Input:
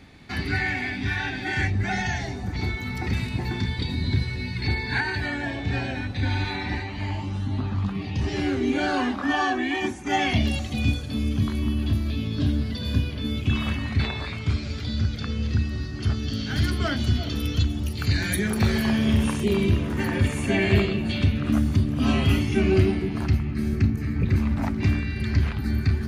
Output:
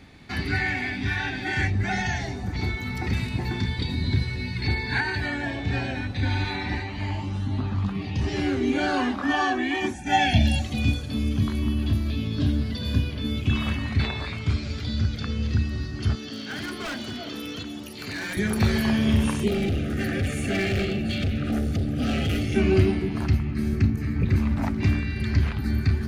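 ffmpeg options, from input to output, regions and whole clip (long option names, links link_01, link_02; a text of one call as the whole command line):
ffmpeg -i in.wav -filter_complex "[0:a]asettb=1/sr,asplit=3[link_01][link_02][link_03];[link_01]atrim=end=9.944[link_04];[link_02]atrim=start=9.94:end=10.62,asetpts=PTS-STARTPTS,afade=type=in:duration=0.004:curve=qsin,afade=type=out:start_time=0.676:duration=0.004:curve=qsin,asuperstop=centerf=1100:order=12:qfactor=2.7,aecho=1:1:1.2:0.67,atrim=end_sample=29988[link_05];[link_03]atrim=start=10.616[link_06];[link_04][link_05]acrossfade=duration=0.004:curve1=hsin:curve2=qsin[link_07];[link_07][link_06]acrossfade=duration=0.004:curve1=qsin:curve2=hsin,asettb=1/sr,asplit=3[link_08][link_09][link_10];[link_08]atrim=end=16.154[link_11];[link_09]atrim=start=16.15:end=18.37,asetpts=PTS-STARTPTS,afade=type=in:duration=0.004:curve=qsin,afade=type=out:start_time=2.216:duration=0.004:curve=qsin,acrossover=split=2700[link_12][link_13];[link_13]acompressor=threshold=-39dB:ratio=4:attack=1:release=60[link_14];[link_12][link_14]amix=inputs=2:normalize=0,highpass=290,aeval=exprs='0.0501*(abs(mod(val(0)/0.0501+3,4)-2)-1)':channel_layout=same[link_15];[link_10]atrim=start=18.366[link_16];[link_11][link_15]acrossfade=duration=0.004:curve1=hsin:curve2=qsin[link_17];[link_17][link_16]acrossfade=duration=0.004:curve1=qsin:curve2=hsin,asettb=1/sr,asplit=3[link_18][link_19][link_20];[link_18]atrim=end=19.484[link_21];[link_19]atrim=start=19.48:end=22.56,asetpts=PTS-STARTPTS,afade=type=in:duration=0.004:curve=qsin,afade=type=out:start_time=3.076:duration=0.004:curve=qsin,asoftclip=type=hard:threshold=-21.5dB,asuperstop=centerf=990:order=20:qfactor=2.9[link_22];[link_20]atrim=start=22.556[link_23];[link_21][link_22]acrossfade=duration=0.004:curve1=hsin:curve2=qsin[link_24];[link_24][link_23]acrossfade=duration=0.004:curve1=qsin:curve2=hsin" out.wav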